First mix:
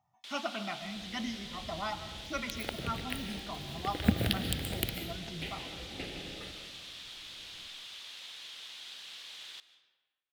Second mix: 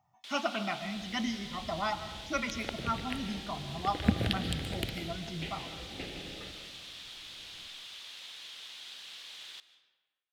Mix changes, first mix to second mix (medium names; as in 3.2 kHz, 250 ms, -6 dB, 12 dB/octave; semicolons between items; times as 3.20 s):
speech +4.0 dB; second sound: add distance through air 53 m